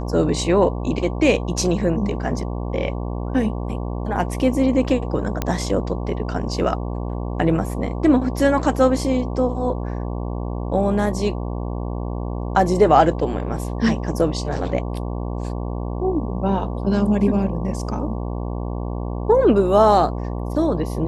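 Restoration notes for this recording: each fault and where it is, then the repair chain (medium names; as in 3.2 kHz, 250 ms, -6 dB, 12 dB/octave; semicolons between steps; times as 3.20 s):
buzz 60 Hz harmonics 19 -26 dBFS
5.42 s: pop -7 dBFS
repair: de-click; de-hum 60 Hz, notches 19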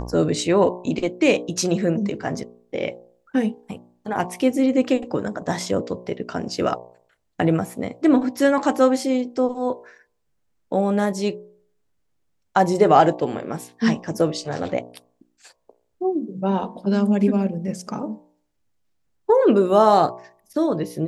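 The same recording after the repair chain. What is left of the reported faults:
nothing left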